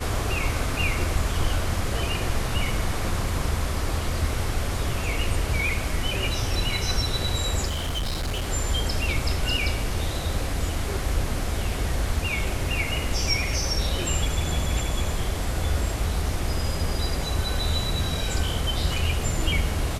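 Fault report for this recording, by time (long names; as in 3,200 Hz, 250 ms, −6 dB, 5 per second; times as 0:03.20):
0:07.67–0:08.48: clipping −23.5 dBFS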